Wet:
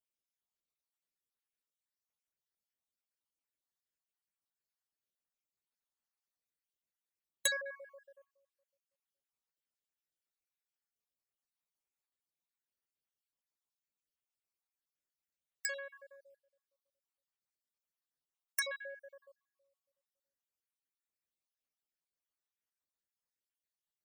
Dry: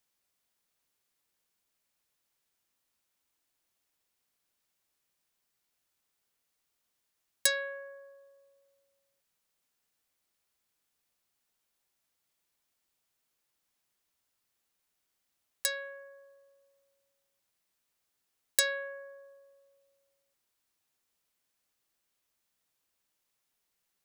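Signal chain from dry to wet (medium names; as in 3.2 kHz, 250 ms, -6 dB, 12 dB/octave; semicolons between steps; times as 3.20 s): random holes in the spectrogram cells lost 58%; in parallel at -10.5 dB: wavefolder -22 dBFS; on the sum: gate -59 dBFS, range -10 dB; trim -5 dB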